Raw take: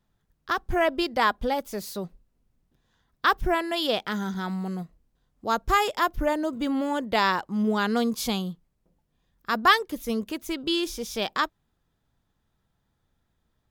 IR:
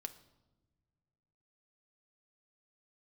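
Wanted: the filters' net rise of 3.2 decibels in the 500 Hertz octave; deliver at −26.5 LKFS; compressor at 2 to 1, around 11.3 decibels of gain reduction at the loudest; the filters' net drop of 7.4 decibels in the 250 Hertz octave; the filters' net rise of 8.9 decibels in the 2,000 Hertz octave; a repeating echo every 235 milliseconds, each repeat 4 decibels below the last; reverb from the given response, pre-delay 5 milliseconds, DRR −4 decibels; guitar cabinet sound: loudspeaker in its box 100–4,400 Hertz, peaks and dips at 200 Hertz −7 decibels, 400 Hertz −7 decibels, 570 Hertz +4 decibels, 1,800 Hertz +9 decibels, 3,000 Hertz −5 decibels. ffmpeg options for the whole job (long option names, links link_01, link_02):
-filter_complex "[0:a]equalizer=frequency=250:width_type=o:gain=-7,equalizer=frequency=500:width_type=o:gain=5,equalizer=frequency=2000:width_type=o:gain=3.5,acompressor=threshold=-32dB:ratio=2,aecho=1:1:235|470|705|940|1175|1410|1645|1880|2115:0.631|0.398|0.25|0.158|0.0994|0.0626|0.0394|0.0249|0.0157,asplit=2[link_01][link_02];[1:a]atrim=start_sample=2205,adelay=5[link_03];[link_02][link_03]afir=irnorm=-1:irlink=0,volume=7.5dB[link_04];[link_01][link_04]amix=inputs=2:normalize=0,highpass=100,equalizer=frequency=200:width_type=q:width=4:gain=-7,equalizer=frequency=400:width_type=q:width=4:gain=-7,equalizer=frequency=570:width_type=q:width=4:gain=4,equalizer=frequency=1800:width_type=q:width=4:gain=9,equalizer=frequency=3000:width_type=q:width=4:gain=-5,lowpass=frequency=4400:width=0.5412,lowpass=frequency=4400:width=1.3066,volume=-3dB"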